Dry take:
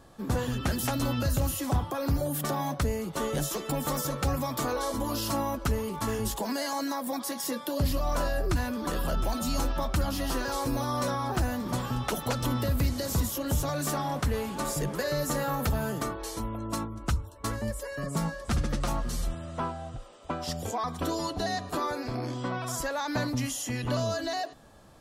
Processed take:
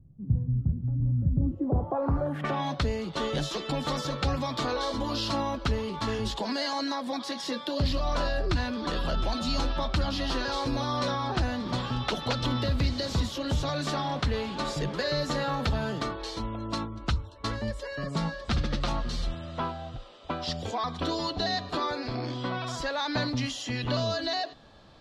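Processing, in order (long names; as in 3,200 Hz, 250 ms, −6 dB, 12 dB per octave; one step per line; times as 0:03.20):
low-pass filter sweep 140 Hz → 4,000 Hz, 0:01.16–0:02.71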